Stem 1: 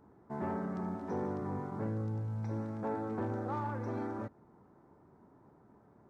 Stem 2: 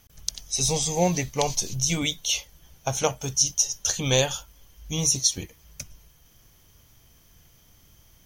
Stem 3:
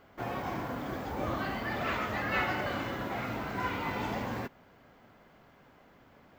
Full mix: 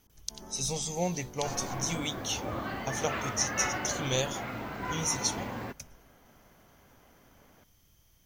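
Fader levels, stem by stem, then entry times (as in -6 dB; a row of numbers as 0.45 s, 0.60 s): -13.0 dB, -8.5 dB, -2.0 dB; 0.00 s, 0.00 s, 1.25 s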